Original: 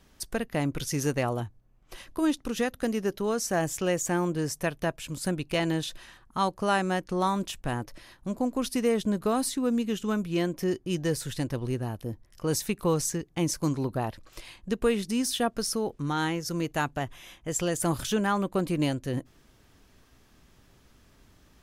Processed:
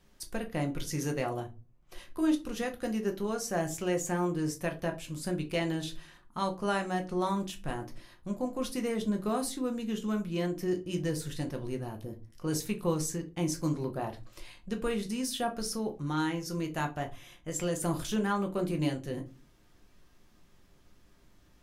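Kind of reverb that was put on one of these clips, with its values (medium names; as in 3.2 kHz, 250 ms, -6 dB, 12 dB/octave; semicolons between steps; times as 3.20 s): simulated room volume 120 m³, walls furnished, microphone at 0.9 m; trim -6.5 dB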